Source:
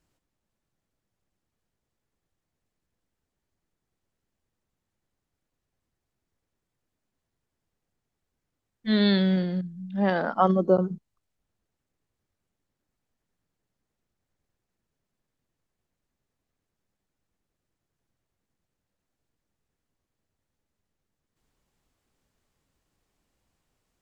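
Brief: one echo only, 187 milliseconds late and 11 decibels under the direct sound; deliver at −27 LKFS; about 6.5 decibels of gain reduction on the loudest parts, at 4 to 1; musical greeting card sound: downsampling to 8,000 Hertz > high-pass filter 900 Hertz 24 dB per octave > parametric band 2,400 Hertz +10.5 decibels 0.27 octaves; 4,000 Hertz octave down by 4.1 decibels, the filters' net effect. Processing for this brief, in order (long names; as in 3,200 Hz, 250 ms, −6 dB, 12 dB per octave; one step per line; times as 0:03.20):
parametric band 4,000 Hz −5.5 dB
downward compressor 4 to 1, threshold −22 dBFS
single-tap delay 187 ms −11 dB
downsampling to 8,000 Hz
high-pass filter 900 Hz 24 dB per octave
parametric band 2,400 Hz +10.5 dB 0.27 octaves
level +9.5 dB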